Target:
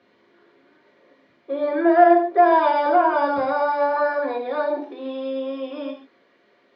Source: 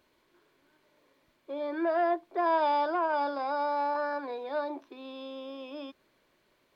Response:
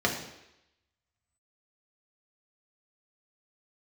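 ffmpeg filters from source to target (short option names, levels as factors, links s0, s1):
-filter_complex "[0:a]asetnsamples=n=441:p=0,asendcmd='3.37 highpass f 270',highpass=150,lowpass=4300[s0];[1:a]atrim=start_sample=2205,afade=t=out:st=0.21:d=0.01,atrim=end_sample=9702[s1];[s0][s1]afir=irnorm=-1:irlink=0,volume=0.841"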